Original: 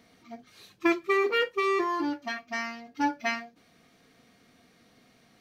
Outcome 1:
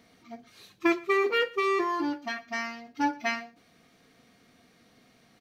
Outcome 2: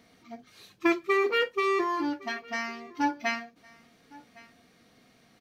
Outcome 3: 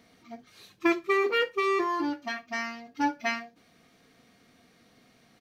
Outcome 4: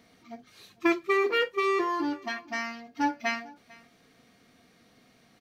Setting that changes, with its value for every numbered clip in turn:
echo, time: 119, 1111, 70, 448 ms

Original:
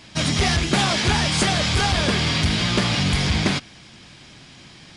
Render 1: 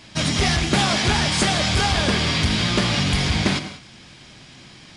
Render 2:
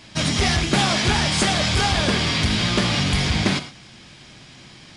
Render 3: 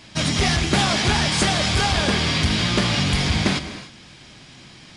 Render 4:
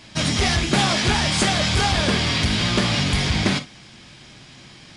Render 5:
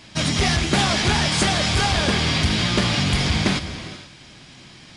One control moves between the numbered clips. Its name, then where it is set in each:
non-linear reverb, gate: 220, 140, 330, 80, 510 ms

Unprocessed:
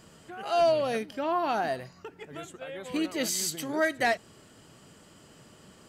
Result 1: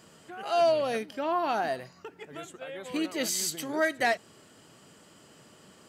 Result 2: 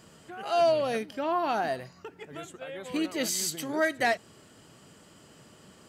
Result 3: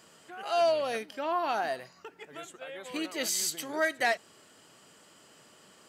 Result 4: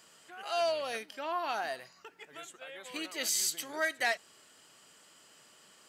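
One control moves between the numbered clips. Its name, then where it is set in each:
HPF, cutoff: 170, 55, 560, 1500 Hz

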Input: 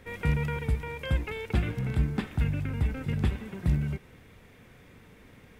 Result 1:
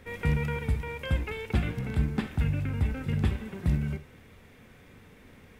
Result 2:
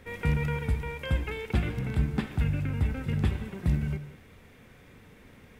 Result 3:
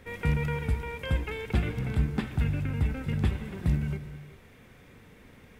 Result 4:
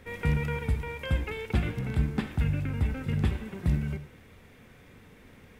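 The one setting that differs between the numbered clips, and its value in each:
non-linear reverb, gate: 90, 220, 420, 140 ms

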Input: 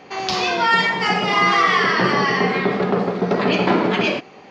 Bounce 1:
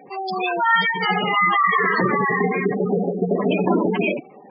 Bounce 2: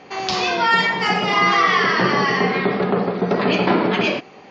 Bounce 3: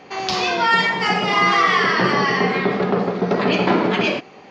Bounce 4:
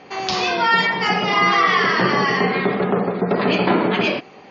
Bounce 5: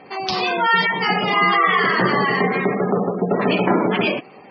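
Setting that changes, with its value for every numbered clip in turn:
spectral gate, under each frame's peak: -10, -45, -60, -35, -20 dB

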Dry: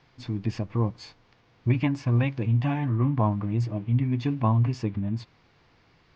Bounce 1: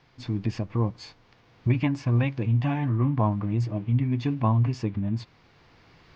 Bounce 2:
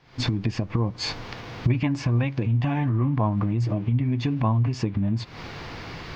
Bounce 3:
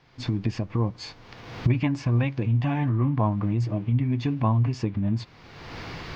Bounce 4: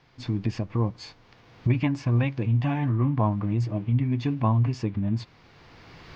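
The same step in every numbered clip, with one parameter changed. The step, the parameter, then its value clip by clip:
recorder AGC, rising by: 5.2, 83, 33, 13 dB/s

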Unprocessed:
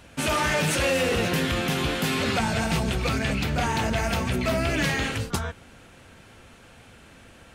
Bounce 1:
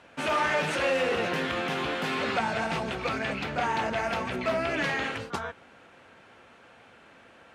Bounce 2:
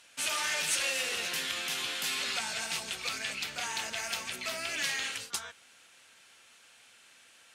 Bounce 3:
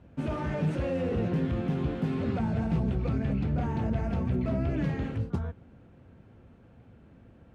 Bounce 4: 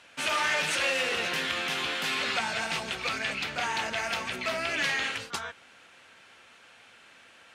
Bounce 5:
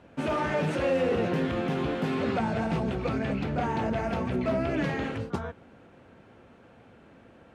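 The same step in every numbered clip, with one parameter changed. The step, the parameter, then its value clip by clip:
band-pass, frequency: 980, 6900, 130, 2600, 370 Hz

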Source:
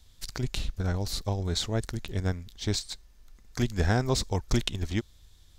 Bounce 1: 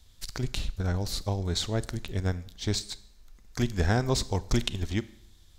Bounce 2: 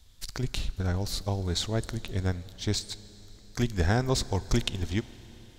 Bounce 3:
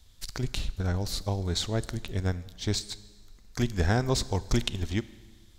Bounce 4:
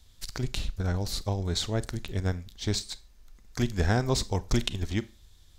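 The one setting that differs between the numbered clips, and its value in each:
Schroeder reverb, RT60: 0.68, 4.3, 1.5, 0.32 s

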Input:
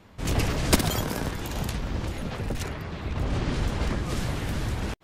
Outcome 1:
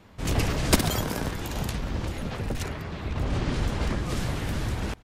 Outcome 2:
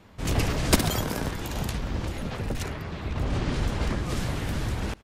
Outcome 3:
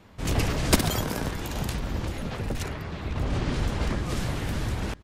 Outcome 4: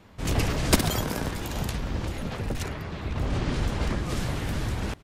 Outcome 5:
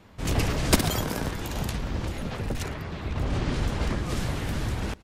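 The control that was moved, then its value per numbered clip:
echo, time: 193, 76, 985, 632, 113 ms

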